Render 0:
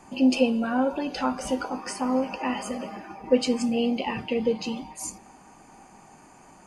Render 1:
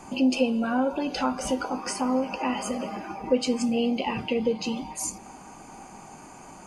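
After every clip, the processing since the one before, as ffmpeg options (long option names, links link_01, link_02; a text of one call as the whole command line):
ffmpeg -i in.wav -af "equalizer=frequency=6400:width_type=o:width=0.21:gain=2,bandreject=frequency=1800:width=11,acompressor=threshold=-39dB:ratio=1.5,volume=6dB" out.wav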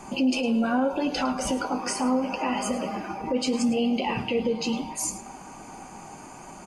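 ffmpeg -i in.wav -af "alimiter=limit=-19.5dB:level=0:latency=1:release=33,flanger=delay=4.9:depth=7.9:regen=-57:speed=0.76:shape=sinusoidal,aecho=1:1:107:0.178,volume=6.5dB" out.wav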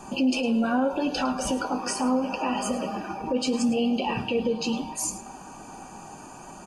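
ffmpeg -i in.wav -af "asuperstop=centerf=2100:order=20:qfactor=5.8" out.wav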